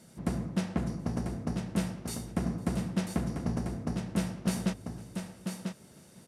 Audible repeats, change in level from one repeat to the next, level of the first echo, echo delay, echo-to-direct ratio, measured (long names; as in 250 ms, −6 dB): 3, repeats not evenly spaced, −22.5 dB, 505 ms, −6.0 dB